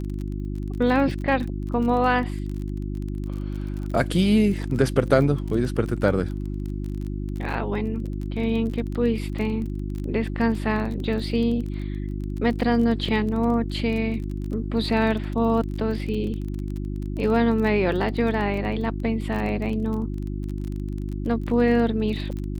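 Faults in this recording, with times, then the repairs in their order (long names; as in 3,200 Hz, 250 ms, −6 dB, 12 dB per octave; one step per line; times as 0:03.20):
surface crackle 26 per second −30 dBFS
mains hum 50 Hz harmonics 7 −29 dBFS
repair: click removal
hum removal 50 Hz, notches 7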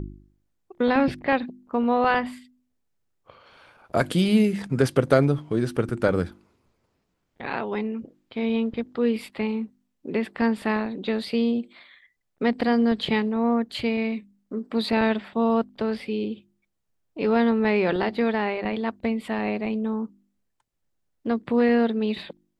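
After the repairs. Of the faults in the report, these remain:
none of them is left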